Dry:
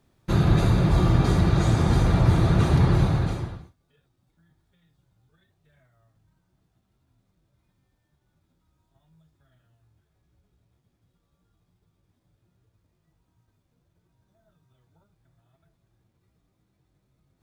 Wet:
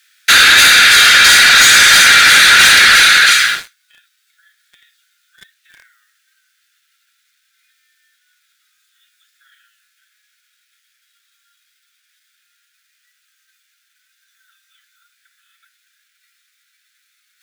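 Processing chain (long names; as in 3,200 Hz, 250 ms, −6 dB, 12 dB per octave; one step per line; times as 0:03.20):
Butterworth high-pass 1,400 Hz 96 dB per octave
leveller curve on the samples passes 3
boost into a limiter +29 dB
level −1 dB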